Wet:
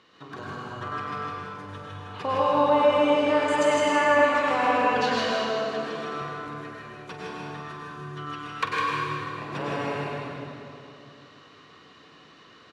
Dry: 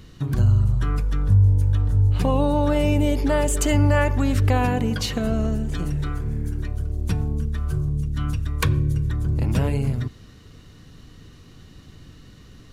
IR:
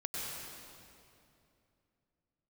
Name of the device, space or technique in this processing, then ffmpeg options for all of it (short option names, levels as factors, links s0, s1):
station announcement: -filter_complex "[0:a]highpass=500,lowpass=3700,equalizer=f=1100:t=o:w=0.31:g=6,aecho=1:1:46.65|157.4:0.282|0.631[s0];[1:a]atrim=start_sample=2205[s1];[s0][s1]afir=irnorm=-1:irlink=0,asettb=1/sr,asplit=3[s2][s3][s4];[s2]atrim=end=5.314[s5];[s3]atrim=start=5.31:end=6.22,asetpts=PTS-STARTPTS,afade=t=in:d=0.004:c=qsin,afade=t=out:st=0.906:d=0.004:c=qsin,highpass=130[s6];[s4]atrim=start=6.216[s7];[s5][s6]acrossfade=d=0.004:c1=hsin:c2=qsin[s8];[s8][s7]acrossfade=d=0.004:c1=qsin:c2=hsin"